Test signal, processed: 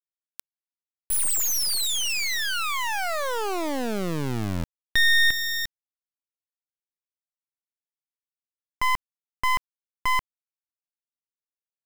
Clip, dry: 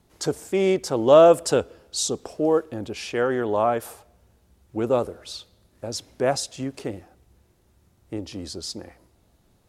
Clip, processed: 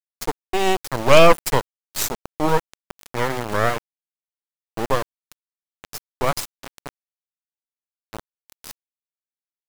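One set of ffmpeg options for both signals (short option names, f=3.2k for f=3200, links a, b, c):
-af "aeval=exprs='0.794*(cos(1*acos(clip(val(0)/0.794,-1,1)))-cos(1*PI/2))+0.112*(cos(2*acos(clip(val(0)/0.794,-1,1)))-cos(2*PI/2))+0.0355*(cos(3*acos(clip(val(0)/0.794,-1,1)))-cos(3*PI/2))+0.0708*(cos(4*acos(clip(val(0)/0.794,-1,1)))-cos(4*PI/2))+0.316*(cos(6*acos(clip(val(0)/0.794,-1,1)))-cos(6*PI/2))':c=same,highshelf=f=5.8k:g=5.5,aeval=exprs='val(0)*gte(abs(val(0)),0.0841)':c=same,volume=-1dB"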